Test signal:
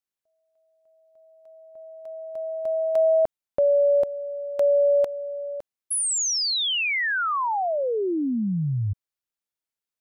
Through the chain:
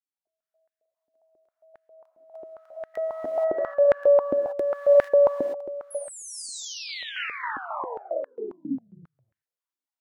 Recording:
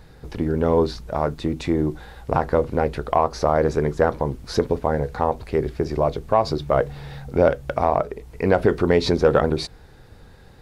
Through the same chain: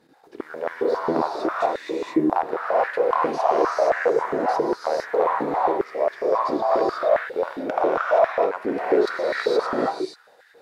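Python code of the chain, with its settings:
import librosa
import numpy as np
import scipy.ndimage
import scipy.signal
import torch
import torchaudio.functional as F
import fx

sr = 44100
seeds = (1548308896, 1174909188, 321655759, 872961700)

y = fx.level_steps(x, sr, step_db=12)
y = fx.cheby_harmonics(y, sr, harmonics=(2, 3, 7), levels_db=(-19, -19, -34), full_scale_db=-9.5)
y = fx.rev_gated(y, sr, seeds[0], gate_ms=500, shape='rising', drr_db=-5.5)
y = fx.filter_held_highpass(y, sr, hz=7.4, low_hz=280.0, high_hz=1700.0)
y = F.gain(torch.from_numpy(y), -2.0).numpy()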